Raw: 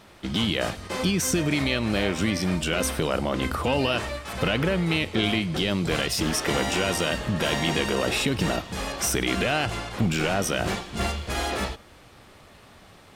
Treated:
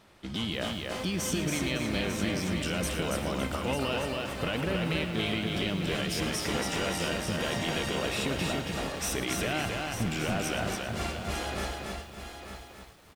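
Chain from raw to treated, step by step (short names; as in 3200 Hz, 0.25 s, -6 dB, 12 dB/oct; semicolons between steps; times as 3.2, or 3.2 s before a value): on a send: tapped delay 0.114/0.897 s -14/-9 dB; on the sum: lo-fi delay 0.279 s, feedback 35%, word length 8-bit, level -3 dB; gain -8 dB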